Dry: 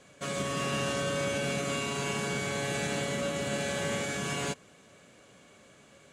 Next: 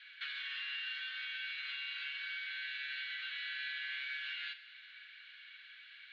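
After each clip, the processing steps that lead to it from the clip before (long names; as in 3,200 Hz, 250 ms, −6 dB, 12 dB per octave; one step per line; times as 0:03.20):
Chebyshev band-pass filter 1,500–4,200 Hz, order 4
downward compressor 5 to 1, threshold −49 dBFS, peak gain reduction 13 dB
four-comb reverb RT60 1.6 s, combs from 33 ms, DRR 10.5 dB
level +8 dB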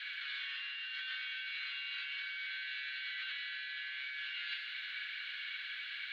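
compressor whose output falls as the input rises −48 dBFS, ratio −1
level +6.5 dB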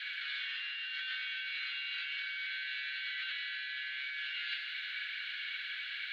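Butterworth high-pass 1,200 Hz 48 dB per octave
level +2.5 dB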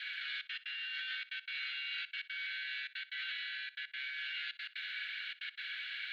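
notch filter 1,100 Hz, Q 9.9
gate pattern "xxxxx.x.xx" 183 BPM −60 dB
flutter between parallel walls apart 10.4 metres, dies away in 0.21 s
level −1.5 dB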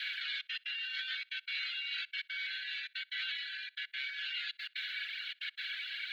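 reverb reduction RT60 1.3 s
high-shelf EQ 3,000 Hz +11 dB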